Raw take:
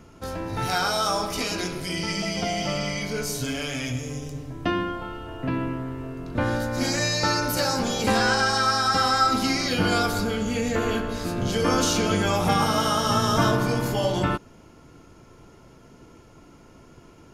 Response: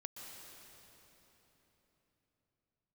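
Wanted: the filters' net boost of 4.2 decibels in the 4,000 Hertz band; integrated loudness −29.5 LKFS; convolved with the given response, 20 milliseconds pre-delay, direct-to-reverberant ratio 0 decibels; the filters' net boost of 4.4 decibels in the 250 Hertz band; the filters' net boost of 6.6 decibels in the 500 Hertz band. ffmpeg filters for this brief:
-filter_complex "[0:a]equalizer=frequency=250:width_type=o:gain=3.5,equalizer=frequency=500:width_type=o:gain=7,equalizer=frequency=4000:width_type=o:gain=5.5,asplit=2[link_01][link_02];[1:a]atrim=start_sample=2205,adelay=20[link_03];[link_02][link_03]afir=irnorm=-1:irlink=0,volume=3dB[link_04];[link_01][link_04]amix=inputs=2:normalize=0,volume=-11.5dB"

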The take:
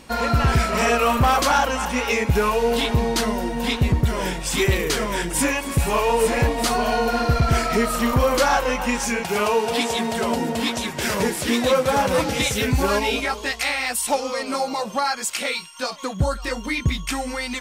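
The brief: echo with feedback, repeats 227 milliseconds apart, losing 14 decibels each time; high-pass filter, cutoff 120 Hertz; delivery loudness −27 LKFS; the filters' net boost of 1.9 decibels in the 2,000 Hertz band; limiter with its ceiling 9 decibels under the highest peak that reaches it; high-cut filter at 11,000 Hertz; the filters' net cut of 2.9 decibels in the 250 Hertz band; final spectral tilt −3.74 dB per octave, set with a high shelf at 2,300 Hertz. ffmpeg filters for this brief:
ffmpeg -i in.wav -af "highpass=120,lowpass=11000,equalizer=frequency=250:width_type=o:gain=-3,equalizer=frequency=2000:width_type=o:gain=5,highshelf=frequency=2300:gain=-5,alimiter=limit=-17dB:level=0:latency=1,aecho=1:1:227|454:0.2|0.0399,volume=-1.5dB" out.wav

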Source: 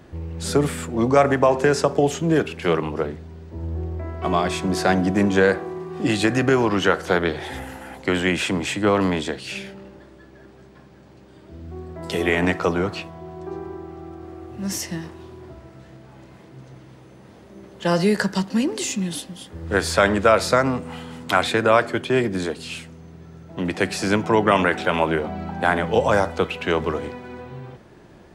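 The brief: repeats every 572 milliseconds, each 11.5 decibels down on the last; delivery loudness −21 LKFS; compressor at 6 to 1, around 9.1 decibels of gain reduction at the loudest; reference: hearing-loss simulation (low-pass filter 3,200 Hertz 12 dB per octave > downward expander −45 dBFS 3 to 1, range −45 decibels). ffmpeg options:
ffmpeg -i in.wav -af "acompressor=threshold=-21dB:ratio=6,lowpass=3200,aecho=1:1:572|1144|1716:0.266|0.0718|0.0194,agate=range=-45dB:threshold=-45dB:ratio=3,volume=6.5dB" out.wav

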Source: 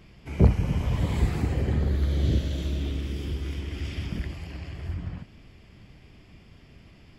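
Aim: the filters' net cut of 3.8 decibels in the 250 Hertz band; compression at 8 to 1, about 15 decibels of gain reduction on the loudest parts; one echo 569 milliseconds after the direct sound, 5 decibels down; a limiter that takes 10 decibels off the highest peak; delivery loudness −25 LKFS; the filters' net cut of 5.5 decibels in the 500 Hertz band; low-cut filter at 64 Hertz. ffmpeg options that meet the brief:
ffmpeg -i in.wav -af "highpass=64,equalizer=frequency=250:width_type=o:gain=-4.5,equalizer=frequency=500:width_type=o:gain=-5.5,acompressor=threshold=-30dB:ratio=8,alimiter=level_in=7.5dB:limit=-24dB:level=0:latency=1,volume=-7.5dB,aecho=1:1:569:0.562,volume=15dB" out.wav

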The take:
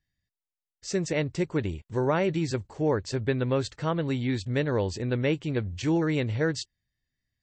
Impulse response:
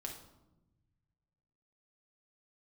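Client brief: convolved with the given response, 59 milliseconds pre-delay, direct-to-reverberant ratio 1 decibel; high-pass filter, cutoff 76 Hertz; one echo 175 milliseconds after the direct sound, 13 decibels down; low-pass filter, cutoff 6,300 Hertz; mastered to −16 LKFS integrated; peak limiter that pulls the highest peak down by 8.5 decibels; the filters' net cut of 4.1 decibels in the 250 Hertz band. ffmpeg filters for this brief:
-filter_complex "[0:a]highpass=76,lowpass=6300,equalizer=frequency=250:width_type=o:gain=-6,alimiter=limit=-22.5dB:level=0:latency=1,aecho=1:1:175:0.224,asplit=2[link_01][link_02];[1:a]atrim=start_sample=2205,adelay=59[link_03];[link_02][link_03]afir=irnorm=-1:irlink=0,volume=1dB[link_04];[link_01][link_04]amix=inputs=2:normalize=0,volume=13.5dB"

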